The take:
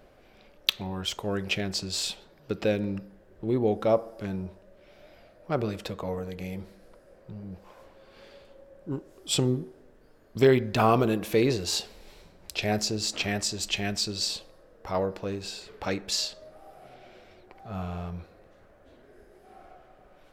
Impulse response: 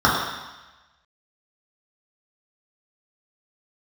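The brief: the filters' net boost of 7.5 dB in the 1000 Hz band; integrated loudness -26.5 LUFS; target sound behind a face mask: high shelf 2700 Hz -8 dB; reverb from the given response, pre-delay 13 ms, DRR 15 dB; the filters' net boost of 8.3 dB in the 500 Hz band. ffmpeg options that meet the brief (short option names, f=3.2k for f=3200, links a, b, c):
-filter_complex "[0:a]equalizer=f=500:t=o:g=9,equalizer=f=1k:t=o:g=7.5,asplit=2[a][b];[1:a]atrim=start_sample=2205,adelay=13[c];[b][c]afir=irnorm=-1:irlink=0,volume=-39dB[d];[a][d]amix=inputs=2:normalize=0,highshelf=f=2.7k:g=-8,volume=-3.5dB"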